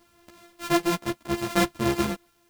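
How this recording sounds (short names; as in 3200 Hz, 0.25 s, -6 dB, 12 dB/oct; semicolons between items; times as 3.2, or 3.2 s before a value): a buzz of ramps at a fixed pitch in blocks of 128 samples; random-step tremolo 3.9 Hz; a quantiser's noise floor 12-bit, dither triangular; a shimmering, thickened sound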